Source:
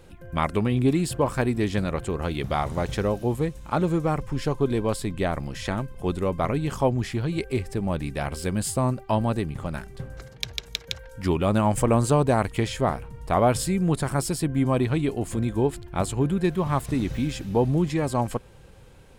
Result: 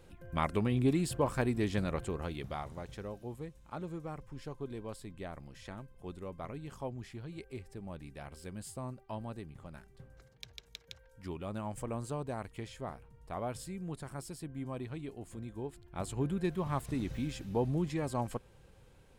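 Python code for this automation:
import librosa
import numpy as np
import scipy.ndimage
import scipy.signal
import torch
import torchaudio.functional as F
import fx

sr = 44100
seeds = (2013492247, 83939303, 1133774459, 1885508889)

y = fx.gain(x, sr, db=fx.line((2.0, -7.5), (2.86, -18.0), (15.75, -18.0), (16.17, -10.0)))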